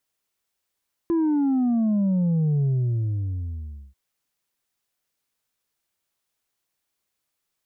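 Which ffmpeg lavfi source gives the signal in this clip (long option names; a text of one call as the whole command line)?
ffmpeg -f lavfi -i "aevalsrc='0.112*clip((2.84-t)/1.3,0,1)*tanh(1.41*sin(2*PI*340*2.84/log(65/340)*(exp(log(65/340)*t/2.84)-1)))/tanh(1.41)':duration=2.84:sample_rate=44100" out.wav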